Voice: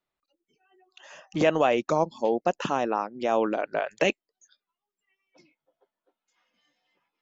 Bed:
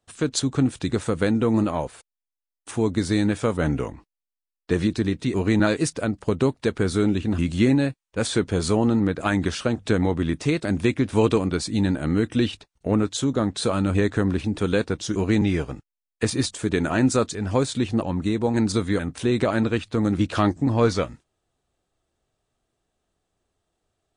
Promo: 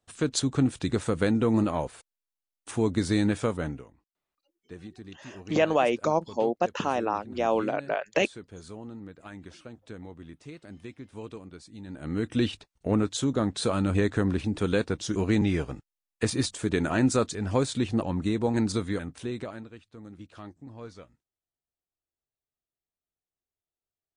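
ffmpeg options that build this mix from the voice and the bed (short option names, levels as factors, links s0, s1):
-filter_complex "[0:a]adelay=4150,volume=0.891[s0];[1:a]volume=5.62,afade=t=out:st=3.39:d=0.45:silence=0.11885,afade=t=in:st=11.86:d=0.57:silence=0.125893,afade=t=out:st=18.5:d=1.17:silence=0.1[s1];[s0][s1]amix=inputs=2:normalize=0"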